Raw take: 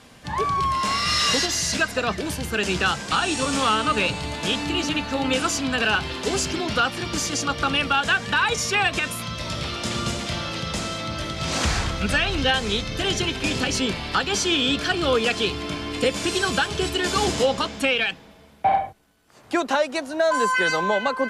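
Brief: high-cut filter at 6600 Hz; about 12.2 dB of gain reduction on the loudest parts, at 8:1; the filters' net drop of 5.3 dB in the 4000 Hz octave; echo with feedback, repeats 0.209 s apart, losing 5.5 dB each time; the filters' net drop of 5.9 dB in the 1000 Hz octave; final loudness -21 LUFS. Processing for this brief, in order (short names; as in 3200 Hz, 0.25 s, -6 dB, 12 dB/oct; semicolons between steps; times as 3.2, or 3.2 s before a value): LPF 6600 Hz; bell 1000 Hz -7.5 dB; bell 4000 Hz -6.5 dB; compressor 8:1, threshold -31 dBFS; feedback echo 0.209 s, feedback 53%, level -5.5 dB; gain +12 dB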